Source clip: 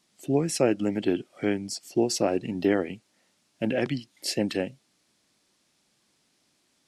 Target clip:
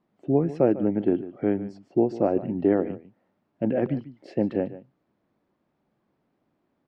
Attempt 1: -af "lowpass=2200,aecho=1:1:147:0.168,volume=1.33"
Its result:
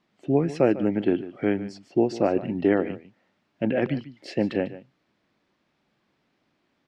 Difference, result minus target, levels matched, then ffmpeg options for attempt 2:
2 kHz band +8.5 dB
-af "lowpass=1000,aecho=1:1:147:0.168,volume=1.33"

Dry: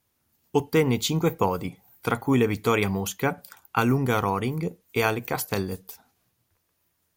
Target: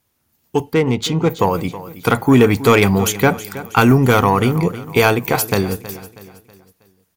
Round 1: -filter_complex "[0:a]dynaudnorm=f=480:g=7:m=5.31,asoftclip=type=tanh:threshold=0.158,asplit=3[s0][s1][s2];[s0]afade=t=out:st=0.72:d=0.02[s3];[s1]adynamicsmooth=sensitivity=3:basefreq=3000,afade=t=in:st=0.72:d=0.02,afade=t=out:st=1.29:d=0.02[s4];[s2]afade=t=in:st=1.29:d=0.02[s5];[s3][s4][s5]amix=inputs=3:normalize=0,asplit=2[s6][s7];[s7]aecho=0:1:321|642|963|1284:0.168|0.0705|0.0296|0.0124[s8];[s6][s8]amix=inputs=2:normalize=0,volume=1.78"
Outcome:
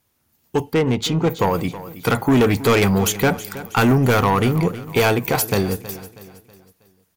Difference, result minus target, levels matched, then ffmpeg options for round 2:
saturation: distortion +9 dB
-filter_complex "[0:a]dynaudnorm=f=480:g=7:m=5.31,asoftclip=type=tanh:threshold=0.447,asplit=3[s0][s1][s2];[s0]afade=t=out:st=0.72:d=0.02[s3];[s1]adynamicsmooth=sensitivity=3:basefreq=3000,afade=t=in:st=0.72:d=0.02,afade=t=out:st=1.29:d=0.02[s4];[s2]afade=t=in:st=1.29:d=0.02[s5];[s3][s4][s5]amix=inputs=3:normalize=0,asplit=2[s6][s7];[s7]aecho=0:1:321|642|963|1284:0.168|0.0705|0.0296|0.0124[s8];[s6][s8]amix=inputs=2:normalize=0,volume=1.78"

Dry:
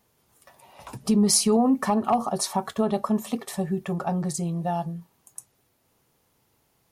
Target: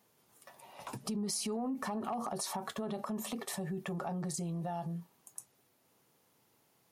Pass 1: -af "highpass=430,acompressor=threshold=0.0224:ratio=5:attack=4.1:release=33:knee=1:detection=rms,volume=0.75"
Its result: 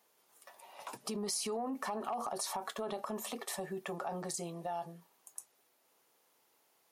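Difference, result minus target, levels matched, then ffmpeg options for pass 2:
125 Hz band -8.0 dB
-af "highpass=140,acompressor=threshold=0.0224:ratio=5:attack=4.1:release=33:knee=1:detection=rms,volume=0.75"

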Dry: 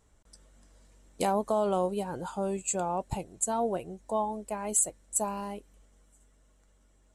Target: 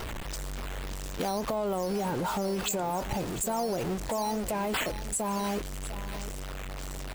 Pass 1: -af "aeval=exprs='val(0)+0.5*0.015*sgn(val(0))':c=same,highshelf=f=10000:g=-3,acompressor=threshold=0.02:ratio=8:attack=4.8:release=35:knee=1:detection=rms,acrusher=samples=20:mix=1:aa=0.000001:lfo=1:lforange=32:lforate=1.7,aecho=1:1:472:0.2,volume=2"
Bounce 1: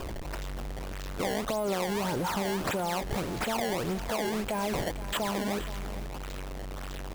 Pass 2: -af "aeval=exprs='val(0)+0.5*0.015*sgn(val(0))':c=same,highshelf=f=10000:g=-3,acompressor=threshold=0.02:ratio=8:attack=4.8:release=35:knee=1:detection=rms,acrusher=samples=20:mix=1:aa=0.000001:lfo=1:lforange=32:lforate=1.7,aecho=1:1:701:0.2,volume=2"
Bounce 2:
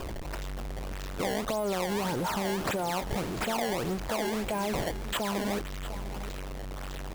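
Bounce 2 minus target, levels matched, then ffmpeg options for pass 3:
decimation with a swept rate: distortion +9 dB
-af "aeval=exprs='val(0)+0.5*0.015*sgn(val(0))':c=same,highshelf=f=10000:g=-3,acompressor=threshold=0.02:ratio=8:attack=4.8:release=35:knee=1:detection=rms,acrusher=samples=5:mix=1:aa=0.000001:lfo=1:lforange=8:lforate=1.7,aecho=1:1:701:0.2,volume=2"

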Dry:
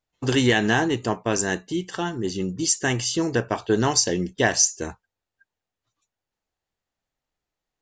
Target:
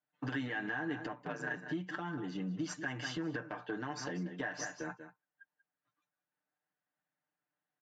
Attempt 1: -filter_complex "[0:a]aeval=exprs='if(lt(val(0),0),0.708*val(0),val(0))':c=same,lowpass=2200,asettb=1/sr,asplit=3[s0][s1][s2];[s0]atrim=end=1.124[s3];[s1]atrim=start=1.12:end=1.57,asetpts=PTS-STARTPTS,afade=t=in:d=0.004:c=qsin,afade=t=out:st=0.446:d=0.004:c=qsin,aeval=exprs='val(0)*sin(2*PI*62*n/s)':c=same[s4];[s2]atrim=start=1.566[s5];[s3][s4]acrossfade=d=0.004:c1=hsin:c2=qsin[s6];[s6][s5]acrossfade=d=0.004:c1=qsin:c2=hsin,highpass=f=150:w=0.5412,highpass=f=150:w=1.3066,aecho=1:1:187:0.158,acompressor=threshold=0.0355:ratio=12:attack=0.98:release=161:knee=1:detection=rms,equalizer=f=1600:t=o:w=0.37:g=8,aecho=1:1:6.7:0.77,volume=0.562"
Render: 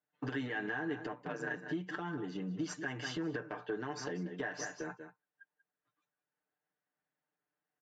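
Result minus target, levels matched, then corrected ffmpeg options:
500 Hz band +3.0 dB
-filter_complex "[0:a]aeval=exprs='if(lt(val(0),0),0.708*val(0),val(0))':c=same,lowpass=2200,equalizer=f=420:t=o:w=0.26:g=-9.5,asettb=1/sr,asplit=3[s0][s1][s2];[s0]atrim=end=1.124[s3];[s1]atrim=start=1.12:end=1.57,asetpts=PTS-STARTPTS,afade=t=in:d=0.004:c=qsin,afade=t=out:st=0.446:d=0.004:c=qsin,aeval=exprs='val(0)*sin(2*PI*62*n/s)':c=same[s4];[s2]atrim=start=1.566[s5];[s3][s4]acrossfade=d=0.004:c1=hsin:c2=qsin[s6];[s6][s5]acrossfade=d=0.004:c1=qsin:c2=hsin,highpass=f=150:w=0.5412,highpass=f=150:w=1.3066,aecho=1:1:187:0.158,acompressor=threshold=0.0355:ratio=12:attack=0.98:release=161:knee=1:detection=rms,equalizer=f=1600:t=o:w=0.37:g=8,aecho=1:1:6.7:0.77,volume=0.562"

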